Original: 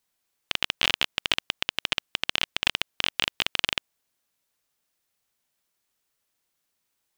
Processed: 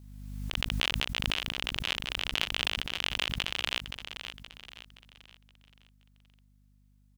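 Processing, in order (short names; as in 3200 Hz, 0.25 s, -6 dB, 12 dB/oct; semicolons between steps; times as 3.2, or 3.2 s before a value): feedback echo 0.522 s, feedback 43%, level -9 dB; hum 50 Hz, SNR 24 dB; backwards sustainer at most 35 dB/s; gain -7.5 dB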